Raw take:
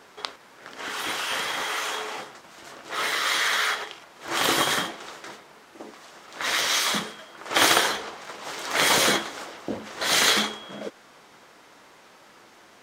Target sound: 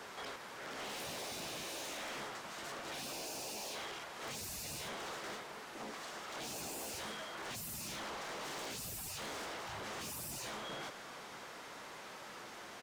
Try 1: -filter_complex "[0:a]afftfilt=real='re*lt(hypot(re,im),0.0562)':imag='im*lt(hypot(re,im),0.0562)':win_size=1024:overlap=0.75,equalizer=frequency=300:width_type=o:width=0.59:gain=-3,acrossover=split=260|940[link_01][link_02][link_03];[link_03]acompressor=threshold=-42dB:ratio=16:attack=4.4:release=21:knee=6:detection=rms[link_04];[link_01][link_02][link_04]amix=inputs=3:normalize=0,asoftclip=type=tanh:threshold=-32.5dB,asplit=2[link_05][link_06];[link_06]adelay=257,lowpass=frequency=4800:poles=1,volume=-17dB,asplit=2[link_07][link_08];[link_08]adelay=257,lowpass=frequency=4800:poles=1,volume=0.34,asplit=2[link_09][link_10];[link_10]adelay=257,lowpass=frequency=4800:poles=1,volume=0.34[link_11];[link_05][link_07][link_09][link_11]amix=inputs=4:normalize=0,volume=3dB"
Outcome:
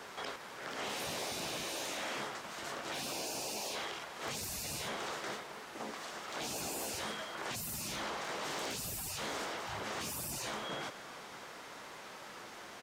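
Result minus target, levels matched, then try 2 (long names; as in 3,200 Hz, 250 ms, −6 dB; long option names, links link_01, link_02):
soft clipping: distortion −13 dB
-filter_complex "[0:a]afftfilt=real='re*lt(hypot(re,im),0.0562)':imag='im*lt(hypot(re,im),0.0562)':win_size=1024:overlap=0.75,equalizer=frequency=300:width_type=o:width=0.59:gain=-3,acrossover=split=260|940[link_01][link_02][link_03];[link_03]acompressor=threshold=-42dB:ratio=16:attack=4.4:release=21:knee=6:detection=rms[link_04];[link_01][link_02][link_04]amix=inputs=3:normalize=0,asoftclip=type=tanh:threshold=-43.5dB,asplit=2[link_05][link_06];[link_06]adelay=257,lowpass=frequency=4800:poles=1,volume=-17dB,asplit=2[link_07][link_08];[link_08]adelay=257,lowpass=frequency=4800:poles=1,volume=0.34,asplit=2[link_09][link_10];[link_10]adelay=257,lowpass=frequency=4800:poles=1,volume=0.34[link_11];[link_05][link_07][link_09][link_11]amix=inputs=4:normalize=0,volume=3dB"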